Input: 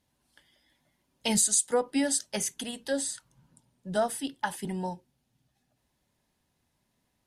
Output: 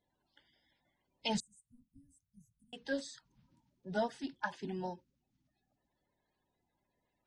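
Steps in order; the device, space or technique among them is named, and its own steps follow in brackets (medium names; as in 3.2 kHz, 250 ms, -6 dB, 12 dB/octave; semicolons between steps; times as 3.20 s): clip after many re-uploads (low-pass 5.6 kHz 24 dB/octave; coarse spectral quantiser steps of 30 dB); 1.40–2.73 s: inverse Chebyshev band-stop 420–4600 Hz, stop band 60 dB; trim -6 dB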